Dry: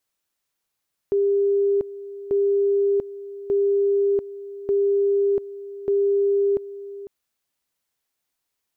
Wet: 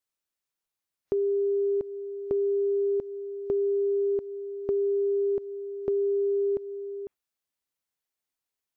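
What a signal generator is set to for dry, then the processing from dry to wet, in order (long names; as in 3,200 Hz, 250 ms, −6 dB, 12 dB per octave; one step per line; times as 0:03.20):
tone at two levels in turn 400 Hz −16.5 dBFS, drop 16 dB, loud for 0.69 s, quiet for 0.50 s, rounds 5
noise reduction from a noise print of the clip's start 9 dB
downward compressor 4 to 1, threshold −25 dBFS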